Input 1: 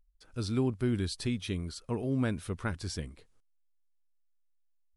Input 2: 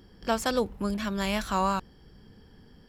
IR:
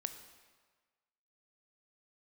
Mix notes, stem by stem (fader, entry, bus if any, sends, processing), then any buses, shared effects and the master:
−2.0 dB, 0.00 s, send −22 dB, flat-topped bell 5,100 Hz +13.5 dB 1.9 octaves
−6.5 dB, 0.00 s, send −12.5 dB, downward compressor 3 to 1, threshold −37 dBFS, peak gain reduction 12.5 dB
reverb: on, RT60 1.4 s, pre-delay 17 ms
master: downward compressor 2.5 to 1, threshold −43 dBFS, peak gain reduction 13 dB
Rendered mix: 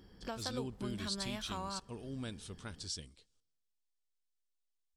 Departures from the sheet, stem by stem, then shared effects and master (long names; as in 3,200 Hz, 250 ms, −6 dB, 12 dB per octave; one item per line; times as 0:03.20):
stem 1 −2.0 dB → −13.5 dB
master: missing downward compressor 2.5 to 1, threshold −43 dBFS, peak gain reduction 13 dB